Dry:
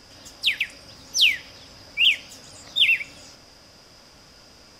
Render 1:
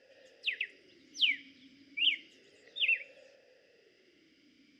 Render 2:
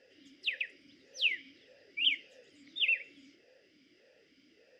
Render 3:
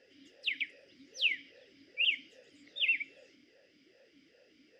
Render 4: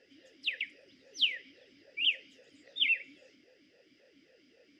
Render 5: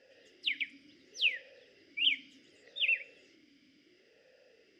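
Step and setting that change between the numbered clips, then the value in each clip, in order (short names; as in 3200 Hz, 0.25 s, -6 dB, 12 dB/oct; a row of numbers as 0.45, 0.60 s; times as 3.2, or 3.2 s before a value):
vowel sweep, rate: 0.31, 1.7, 2.5, 3.7, 0.69 Hz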